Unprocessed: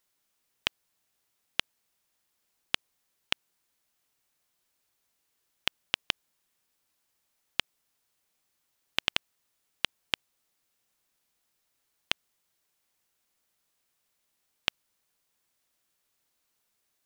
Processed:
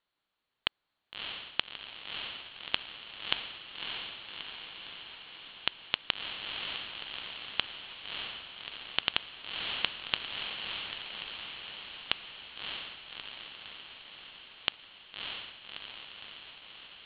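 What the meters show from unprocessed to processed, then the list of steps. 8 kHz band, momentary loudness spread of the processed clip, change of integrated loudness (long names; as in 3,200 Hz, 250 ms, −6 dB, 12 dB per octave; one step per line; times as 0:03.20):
below −30 dB, 13 LU, −3.5 dB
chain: Chebyshev low-pass with heavy ripple 4,400 Hz, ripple 3 dB
on a send: feedback delay with all-pass diffusion 623 ms, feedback 69%, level −3 dB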